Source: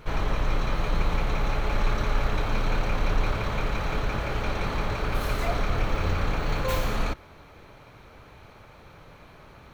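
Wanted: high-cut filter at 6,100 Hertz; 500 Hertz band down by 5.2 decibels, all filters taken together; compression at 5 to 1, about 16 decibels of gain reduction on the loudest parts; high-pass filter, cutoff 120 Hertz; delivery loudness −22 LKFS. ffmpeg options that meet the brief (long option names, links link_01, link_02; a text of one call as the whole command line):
ffmpeg -i in.wav -af "highpass=120,lowpass=6100,equalizer=frequency=500:width_type=o:gain=-6.5,acompressor=threshold=-47dB:ratio=5,volume=26.5dB" out.wav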